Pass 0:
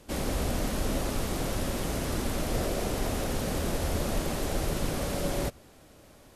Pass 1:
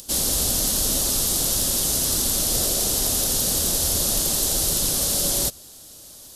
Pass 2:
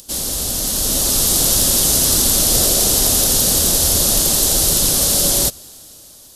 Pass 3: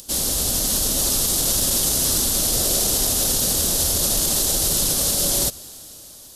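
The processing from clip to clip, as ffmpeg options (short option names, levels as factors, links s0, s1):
-af "acompressor=mode=upward:threshold=0.00282:ratio=2.5,aexciter=amount=4.9:drive=8.2:freq=3300"
-af "dynaudnorm=f=210:g=9:m=3.76"
-af "alimiter=limit=0.299:level=0:latency=1:release=51"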